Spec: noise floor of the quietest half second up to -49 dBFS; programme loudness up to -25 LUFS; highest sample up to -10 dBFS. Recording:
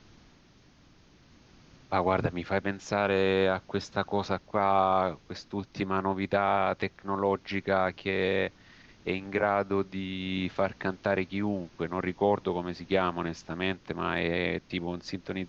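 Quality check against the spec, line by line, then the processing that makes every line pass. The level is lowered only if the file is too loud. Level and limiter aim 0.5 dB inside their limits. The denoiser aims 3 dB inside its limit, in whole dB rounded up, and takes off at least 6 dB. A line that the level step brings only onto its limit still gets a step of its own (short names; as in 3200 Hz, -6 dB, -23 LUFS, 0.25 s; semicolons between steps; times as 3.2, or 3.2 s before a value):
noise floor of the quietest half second -59 dBFS: OK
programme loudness -29.5 LUFS: OK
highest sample -10.5 dBFS: OK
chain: none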